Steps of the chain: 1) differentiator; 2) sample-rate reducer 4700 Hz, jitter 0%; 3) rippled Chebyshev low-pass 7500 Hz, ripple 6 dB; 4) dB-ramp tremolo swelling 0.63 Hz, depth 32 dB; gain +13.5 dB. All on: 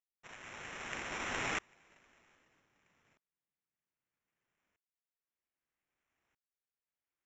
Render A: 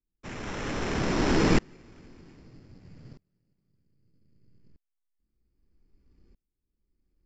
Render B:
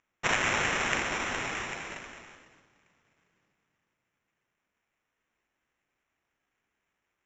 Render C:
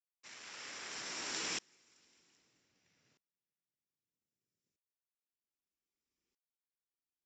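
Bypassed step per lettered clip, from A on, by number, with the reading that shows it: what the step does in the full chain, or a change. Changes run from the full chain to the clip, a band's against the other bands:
1, 250 Hz band +14.0 dB; 4, momentary loudness spread change +2 LU; 2, crest factor change -2.5 dB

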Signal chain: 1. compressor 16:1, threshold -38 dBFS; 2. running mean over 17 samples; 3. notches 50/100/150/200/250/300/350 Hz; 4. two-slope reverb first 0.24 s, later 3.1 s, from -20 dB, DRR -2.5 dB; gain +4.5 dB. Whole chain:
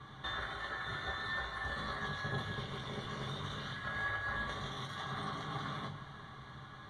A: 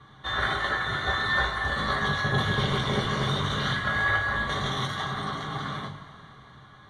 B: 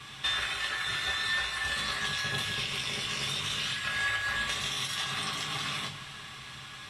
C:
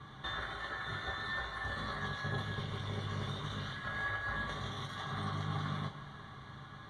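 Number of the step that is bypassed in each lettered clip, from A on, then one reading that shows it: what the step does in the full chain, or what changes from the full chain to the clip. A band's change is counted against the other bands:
1, mean gain reduction 10.5 dB; 2, 8 kHz band +19.0 dB; 3, 125 Hz band +4.0 dB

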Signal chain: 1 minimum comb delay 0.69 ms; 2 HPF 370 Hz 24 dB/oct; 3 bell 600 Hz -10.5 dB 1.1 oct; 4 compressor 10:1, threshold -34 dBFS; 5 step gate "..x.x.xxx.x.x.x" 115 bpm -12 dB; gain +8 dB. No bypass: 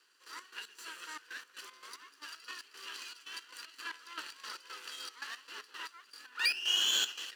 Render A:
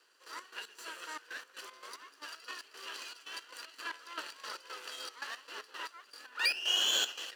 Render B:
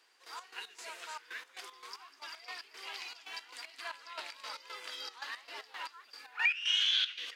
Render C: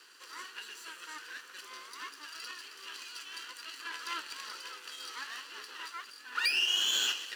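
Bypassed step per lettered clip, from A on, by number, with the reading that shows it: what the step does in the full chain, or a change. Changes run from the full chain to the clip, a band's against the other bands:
3, 500 Hz band +6.5 dB; 1, 8 kHz band -11.0 dB; 5, 1 kHz band +2.0 dB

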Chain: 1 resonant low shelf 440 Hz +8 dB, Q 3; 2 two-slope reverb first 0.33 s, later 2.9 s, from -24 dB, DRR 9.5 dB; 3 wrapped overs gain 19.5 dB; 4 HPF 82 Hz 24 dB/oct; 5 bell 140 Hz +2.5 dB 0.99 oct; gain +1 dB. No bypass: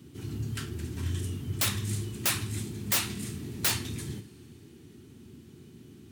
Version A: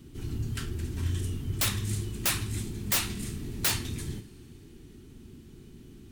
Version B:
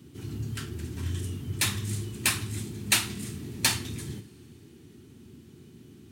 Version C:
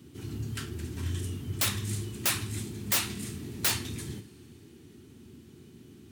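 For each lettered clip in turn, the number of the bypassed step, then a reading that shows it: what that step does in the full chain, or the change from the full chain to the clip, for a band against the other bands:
4, crest factor change -5.0 dB; 3, distortion 0 dB; 5, momentary loudness spread change -12 LU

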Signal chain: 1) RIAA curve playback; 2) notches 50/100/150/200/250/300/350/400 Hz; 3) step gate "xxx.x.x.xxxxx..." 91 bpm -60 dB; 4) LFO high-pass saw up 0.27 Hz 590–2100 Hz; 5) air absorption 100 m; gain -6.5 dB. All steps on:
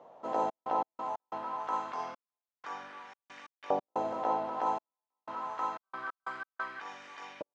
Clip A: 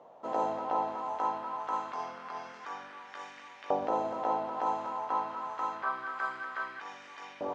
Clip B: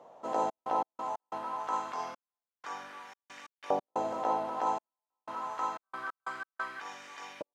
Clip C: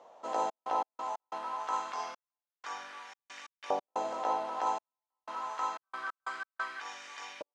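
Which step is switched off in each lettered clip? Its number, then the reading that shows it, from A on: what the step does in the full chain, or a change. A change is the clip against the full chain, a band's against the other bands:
3, 2 kHz band +1.5 dB; 5, 4 kHz band +2.0 dB; 1, 4 kHz band +7.0 dB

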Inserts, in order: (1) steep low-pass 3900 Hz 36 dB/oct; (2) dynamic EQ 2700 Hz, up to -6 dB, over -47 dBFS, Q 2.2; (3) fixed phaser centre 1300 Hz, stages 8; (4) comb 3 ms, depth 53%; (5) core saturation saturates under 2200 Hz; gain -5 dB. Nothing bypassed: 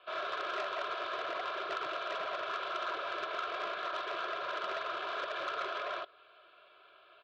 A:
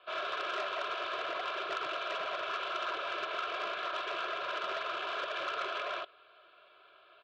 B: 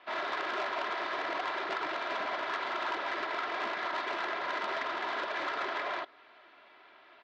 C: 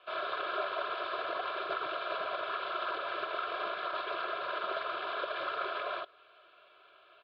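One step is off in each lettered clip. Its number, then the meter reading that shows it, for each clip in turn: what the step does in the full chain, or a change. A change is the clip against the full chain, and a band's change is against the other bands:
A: 2, loudness change +1.0 LU; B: 3, 250 Hz band +5.0 dB; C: 5, loudness change +1.5 LU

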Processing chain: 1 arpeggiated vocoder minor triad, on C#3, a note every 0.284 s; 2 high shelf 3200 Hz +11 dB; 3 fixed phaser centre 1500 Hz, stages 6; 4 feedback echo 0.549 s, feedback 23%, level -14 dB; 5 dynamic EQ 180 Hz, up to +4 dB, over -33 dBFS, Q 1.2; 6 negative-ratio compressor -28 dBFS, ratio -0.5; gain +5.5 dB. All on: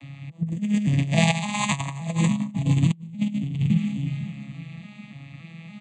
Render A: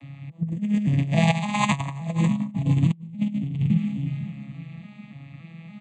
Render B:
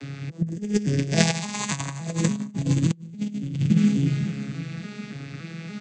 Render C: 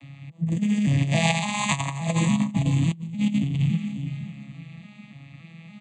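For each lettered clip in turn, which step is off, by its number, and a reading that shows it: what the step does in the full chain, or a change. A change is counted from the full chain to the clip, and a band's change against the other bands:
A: 2, 8 kHz band -6.5 dB; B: 3, 1 kHz band -5.0 dB; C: 5, crest factor change -2.5 dB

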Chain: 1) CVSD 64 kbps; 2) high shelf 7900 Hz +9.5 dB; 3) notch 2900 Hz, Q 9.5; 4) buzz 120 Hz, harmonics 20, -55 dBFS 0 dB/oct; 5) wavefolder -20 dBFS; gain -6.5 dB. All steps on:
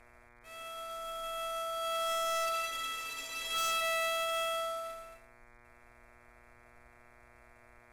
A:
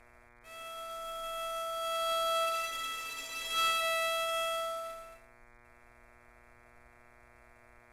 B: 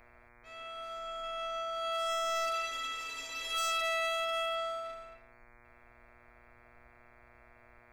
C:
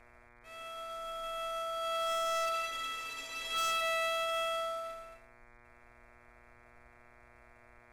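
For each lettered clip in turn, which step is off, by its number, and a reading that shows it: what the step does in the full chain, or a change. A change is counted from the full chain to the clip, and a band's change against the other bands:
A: 5, distortion -11 dB; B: 1, 8 kHz band -3.0 dB; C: 2, 8 kHz band -3.5 dB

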